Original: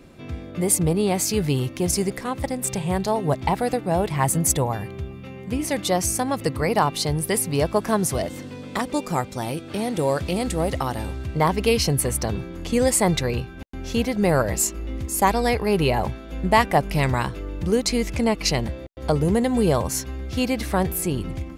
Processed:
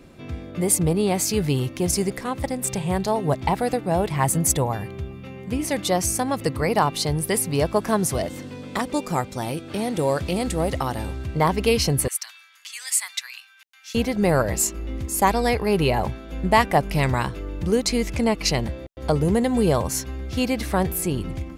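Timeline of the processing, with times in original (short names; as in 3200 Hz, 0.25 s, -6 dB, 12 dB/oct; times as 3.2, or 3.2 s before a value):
12.08–13.95 Bessel high-pass 2100 Hz, order 6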